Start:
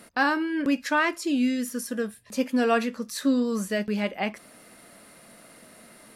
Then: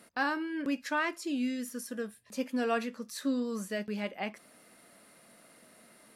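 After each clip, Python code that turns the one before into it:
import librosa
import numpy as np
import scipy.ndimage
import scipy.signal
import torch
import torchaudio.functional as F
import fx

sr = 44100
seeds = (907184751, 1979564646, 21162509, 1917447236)

y = fx.low_shelf(x, sr, hz=71.0, db=-10.5)
y = y * librosa.db_to_amplitude(-7.5)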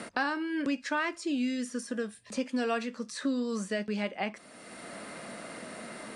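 y = scipy.signal.sosfilt(scipy.signal.ellip(4, 1.0, 50, 9200.0, 'lowpass', fs=sr, output='sos'), x)
y = fx.band_squash(y, sr, depth_pct=70)
y = y * librosa.db_to_amplitude(2.5)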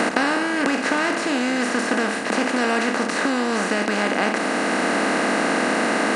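y = fx.bin_compress(x, sr, power=0.2)
y = y * librosa.db_to_amplitude(3.0)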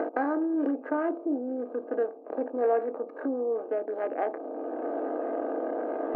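y = fx.wiener(x, sr, points=25)
y = scipy.signal.sosfilt(scipy.signal.butter(4, 310.0, 'highpass', fs=sr, output='sos'), y)
y = fx.spectral_expand(y, sr, expansion=2.5)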